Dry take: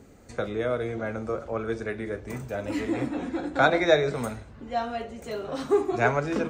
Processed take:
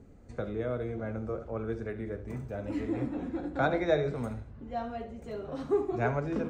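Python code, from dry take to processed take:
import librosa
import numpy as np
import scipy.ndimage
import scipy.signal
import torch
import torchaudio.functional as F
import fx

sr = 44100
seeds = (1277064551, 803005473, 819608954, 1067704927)

p1 = fx.tilt_eq(x, sr, slope=-2.5)
p2 = p1 + fx.echo_single(p1, sr, ms=73, db=-14.0, dry=0)
y = p2 * 10.0 ** (-8.5 / 20.0)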